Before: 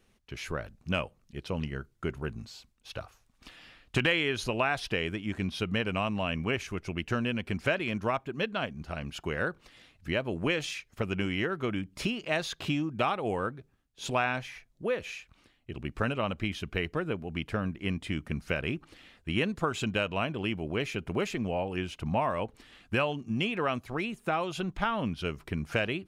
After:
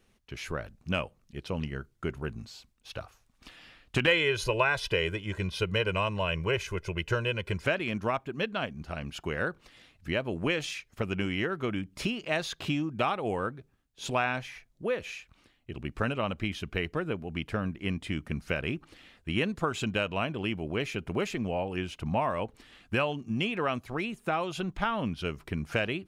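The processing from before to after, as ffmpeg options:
ffmpeg -i in.wav -filter_complex "[0:a]asettb=1/sr,asplit=3[link_01][link_02][link_03];[link_01]atrim=end=4.074[link_04];[link_02]atrim=start=4.07:end=7.64,asetpts=PTS-STARTPTS,afade=type=in:duration=0.004:curve=qsin,afade=type=out:start_time=3.566:duration=0.004:curve=qsin,aecho=1:1:2:0.86,atrim=end_sample=157437[link_05];[link_03]atrim=start=7.636[link_06];[link_04][link_05]acrossfade=duration=0.004:curve1=hsin:curve2=qsin[link_07];[link_07][link_06]acrossfade=duration=0.004:curve1=qsin:curve2=hsin" out.wav

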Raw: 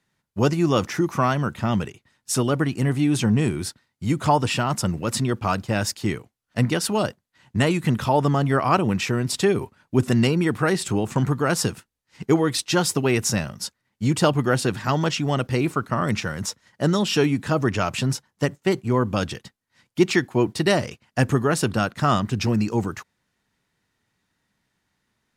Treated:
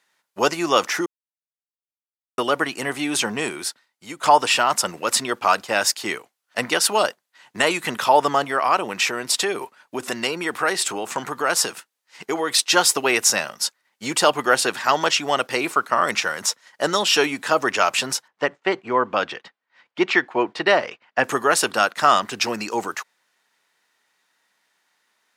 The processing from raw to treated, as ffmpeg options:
ffmpeg -i in.wav -filter_complex "[0:a]asettb=1/sr,asplit=3[link_01][link_02][link_03];[link_01]atrim=end=8.444[link_04];[link_02]atrim=start=8.44:end=12.51,asetpts=PTS-STARTPTS,afade=type=in:duration=0.004:curve=qsin,afade=type=out:start_time=4.066:duration=0.004:curve=qsin,acompressor=threshold=-22dB:ratio=2:attack=3.2:release=140:knee=1:detection=peak[link_05];[link_03]atrim=start=12.506[link_06];[link_04][link_05]acrossfade=duration=0.004:curve1=hsin:curve2=qsin[link_07];[link_07][link_06]acrossfade=duration=0.004:curve1=qsin:curve2=hsin,asettb=1/sr,asplit=3[link_08][link_09][link_10];[link_08]atrim=end=18.284[link_11];[link_09]atrim=start=18.28:end=21.24,asetpts=PTS-STARTPTS,afade=type=in:duration=0.004:curve=qsin,afade=type=out:start_time=2.956:duration=0.004:curve=qsin,lowpass=2700[link_12];[link_10]atrim=start=21.236[link_13];[link_11][link_12]acrossfade=duration=0.004:curve1=hsin:curve2=qsin[link_14];[link_14][link_13]acrossfade=duration=0.004:curve1=qsin:curve2=hsin,asplit=4[link_15][link_16][link_17][link_18];[link_15]atrim=end=1.06,asetpts=PTS-STARTPTS,afade=type=out:start_time=1.056:duration=0.004:curve=hsin[link_19];[link_16]atrim=start=1.06:end=2.38,asetpts=PTS-STARTPTS,volume=0[link_20];[link_17]atrim=start=2.38:end=4.23,asetpts=PTS-STARTPTS,afade=type=in:duration=0.004:curve=hsin,afade=type=out:start_time=0.96:duration=0.89:silence=0.298538[link_21];[link_18]atrim=start=4.23,asetpts=PTS-STARTPTS,afade=type=in:duration=0.004:curve=hsin:silence=0.298538[link_22];[link_19][link_20][link_21][link_22]concat=n=4:v=0:a=1,highpass=610,alimiter=level_in=8.5dB:limit=-1dB:release=50:level=0:latency=1,volume=-1dB" out.wav

